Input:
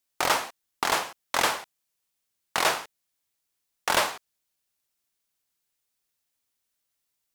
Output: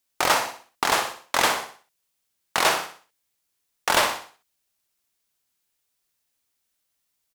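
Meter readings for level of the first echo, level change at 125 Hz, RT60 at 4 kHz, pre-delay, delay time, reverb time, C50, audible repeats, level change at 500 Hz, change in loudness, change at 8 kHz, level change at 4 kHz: −9.0 dB, +3.5 dB, no reverb audible, no reverb audible, 62 ms, no reverb audible, no reverb audible, 4, +3.5 dB, +3.5 dB, +3.5 dB, +3.5 dB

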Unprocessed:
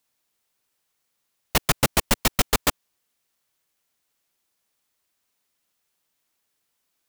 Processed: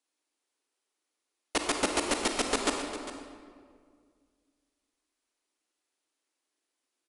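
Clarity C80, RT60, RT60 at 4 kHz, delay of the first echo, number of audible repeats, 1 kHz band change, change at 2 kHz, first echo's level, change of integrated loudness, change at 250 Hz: 4.5 dB, 1.9 s, 1.3 s, 402 ms, 1, −5.0 dB, −6.0 dB, −13.5 dB, −7.5 dB, −3.5 dB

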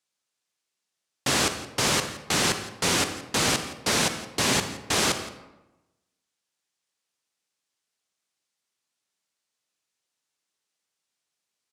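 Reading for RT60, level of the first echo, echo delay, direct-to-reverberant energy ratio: 1.0 s, −17.5 dB, 169 ms, 8.0 dB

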